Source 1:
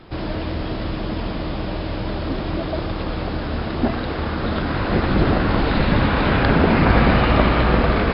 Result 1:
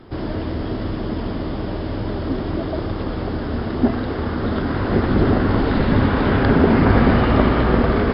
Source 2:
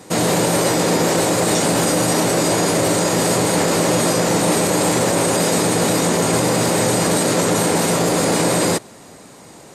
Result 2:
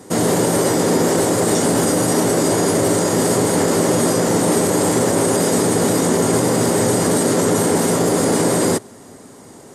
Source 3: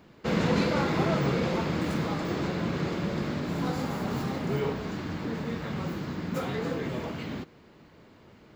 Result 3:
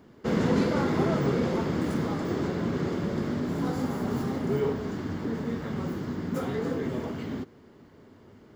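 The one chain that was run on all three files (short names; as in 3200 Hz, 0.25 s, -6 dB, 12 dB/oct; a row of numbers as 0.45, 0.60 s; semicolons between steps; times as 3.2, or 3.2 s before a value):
thirty-one-band EQ 100 Hz +6 dB, 250 Hz +7 dB, 400 Hz +6 dB, 2500 Hz -7 dB, 4000 Hz -5 dB, 10000 Hz +4 dB; gain -1.5 dB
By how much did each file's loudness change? +0.5, +0.5, +1.0 LU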